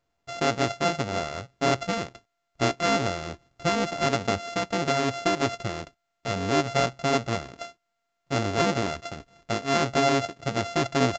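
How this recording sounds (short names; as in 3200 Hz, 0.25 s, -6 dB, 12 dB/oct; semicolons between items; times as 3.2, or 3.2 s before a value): a buzz of ramps at a fixed pitch in blocks of 64 samples; µ-law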